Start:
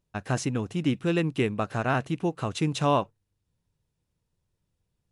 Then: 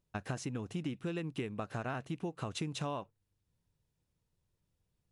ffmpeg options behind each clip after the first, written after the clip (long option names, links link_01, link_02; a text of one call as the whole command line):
ffmpeg -i in.wav -af "acompressor=threshold=-31dB:ratio=10,volume=-3dB" out.wav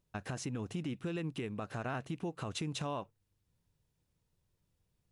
ffmpeg -i in.wav -af "alimiter=level_in=6dB:limit=-24dB:level=0:latency=1:release=62,volume=-6dB,volume=2dB" out.wav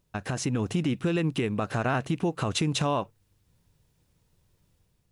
ffmpeg -i in.wav -af "dynaudnorm=framelen=110:gausssize=7:maxgain=4dB,volume=7.5dB" out.wav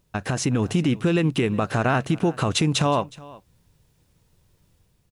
ffmpeg -i in.wav -af "aecho=1:1:366:0.0891,volume=5.5dB" out.wav